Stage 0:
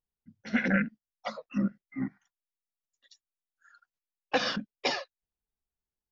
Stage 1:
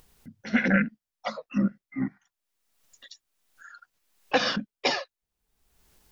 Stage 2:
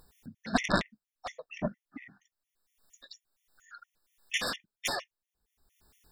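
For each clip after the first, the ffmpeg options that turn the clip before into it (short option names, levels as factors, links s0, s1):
-af "acompressor=mode=upward:threshold=0.00708:ratio=2.5,volume=1.58"
-af "aeval=exprs='0.355*(cos(1*acos(clip(val(0)/0.355,-1,1)))-cos(1*PI/2))+0.0891*(cos(3*acos(clip(val(0)/0.355,-1,1)))-cos(3*PI/2))+0.0631*(cos(7*acos(clip(val(0)/0.355,-1,1)))-cos(7*PI/2))':c=same,afftfilt=real='re*gt(sin(2*PI*4.3*pts/sr)*(1-2*mod(floor(b*sr/1024/1800),2)),0)':imag='im*gt(sin(2*PI*4.3*pts/sr)*(1-2*mod(floor(b*sr/1024/1800),2)),0)':win_size=1024:overlap=0.75"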